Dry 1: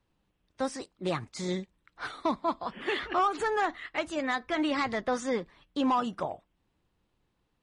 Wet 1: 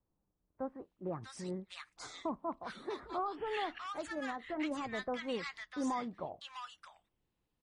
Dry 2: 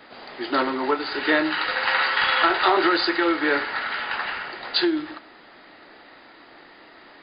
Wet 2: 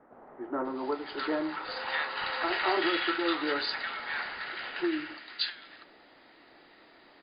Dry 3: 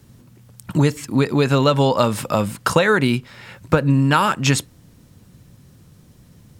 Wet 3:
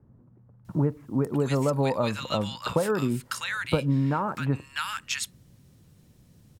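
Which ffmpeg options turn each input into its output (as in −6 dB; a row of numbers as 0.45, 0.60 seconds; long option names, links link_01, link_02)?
-filter_complex "[0:a]acrossover=split=1300[link_01][link_02];[link_02]adelay=650[link_03];[link_01][link_03]amix=inputs=2:normalize=0,volume=-8dB"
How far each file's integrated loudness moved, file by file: −9.5, −9.5, −9.5 LU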